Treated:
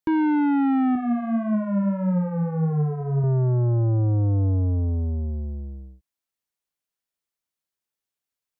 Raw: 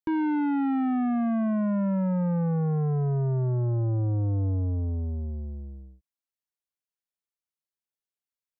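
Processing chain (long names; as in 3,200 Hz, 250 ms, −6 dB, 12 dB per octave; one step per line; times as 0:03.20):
0:00.95–0:03.24: flanger 1.7 Hz, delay 4.5 ms, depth 6.8 ms, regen +22%
level +5 dB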